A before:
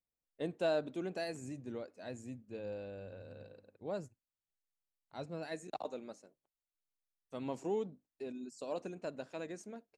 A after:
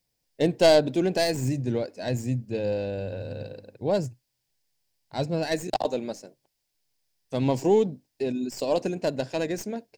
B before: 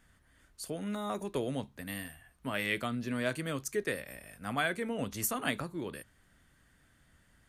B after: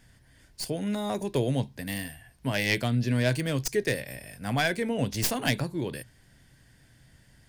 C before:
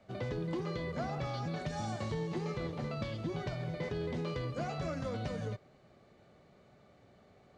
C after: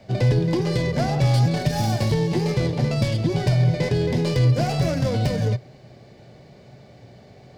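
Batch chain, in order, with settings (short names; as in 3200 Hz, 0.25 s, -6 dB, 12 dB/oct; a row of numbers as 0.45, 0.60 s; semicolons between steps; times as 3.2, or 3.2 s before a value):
tracing distortion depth 0.098 ms; thirty-one-band EQ 125 Hz +10 dB, 1250 Hz -12 dB, 5000 Hz +8 dB; normalise peaks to -9 dBFS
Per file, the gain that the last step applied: +15.5, +6.5, +13.5 dB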